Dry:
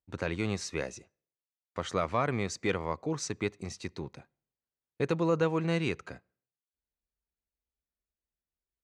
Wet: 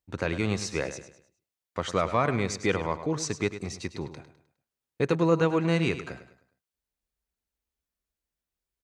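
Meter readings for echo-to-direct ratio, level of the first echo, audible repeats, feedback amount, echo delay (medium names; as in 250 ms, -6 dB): -11.5 dB, -12.0 dB, 3, 38%, 103 ms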